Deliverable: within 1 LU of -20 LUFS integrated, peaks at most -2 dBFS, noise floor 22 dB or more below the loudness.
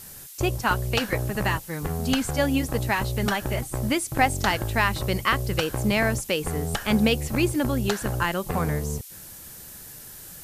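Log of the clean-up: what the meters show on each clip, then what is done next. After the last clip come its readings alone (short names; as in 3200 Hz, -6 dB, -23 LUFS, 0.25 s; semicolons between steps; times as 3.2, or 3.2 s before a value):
noise floor -43 dBFS; noise floor target -47 dBFS; loudness -25.0 LUFS; peak -7.5 dBFS; loudness target -20.0 LUFS
-> denoiser 6 dB, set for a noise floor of -43 dBFS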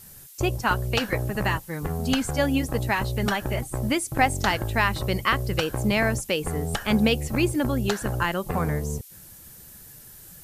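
noise floor -47 dBFS; loudness -25.0 LUFS; peak -7.5 dBFS; loudness target -20.0 LUFS
-> gain +5 dB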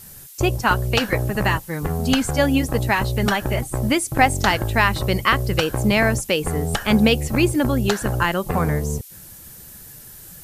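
loudness -20.0 LUFS; peak -2.5 dBFS; noise floor -42 dBFS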